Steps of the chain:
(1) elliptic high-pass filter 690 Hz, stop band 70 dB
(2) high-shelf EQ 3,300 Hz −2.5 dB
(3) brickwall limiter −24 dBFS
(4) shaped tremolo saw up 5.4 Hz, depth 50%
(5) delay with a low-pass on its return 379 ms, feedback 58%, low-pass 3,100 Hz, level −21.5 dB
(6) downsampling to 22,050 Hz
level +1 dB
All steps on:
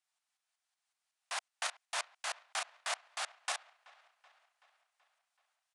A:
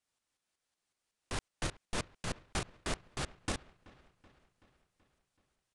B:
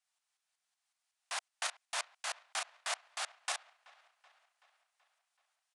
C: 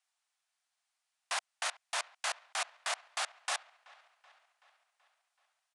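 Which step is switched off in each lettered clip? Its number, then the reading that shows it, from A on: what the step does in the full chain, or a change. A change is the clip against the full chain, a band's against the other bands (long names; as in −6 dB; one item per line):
1, 500 Hz band +8.5 dB
2, 8 kHz band +1.5 dB
4, change in momentary loudness spread −1 LU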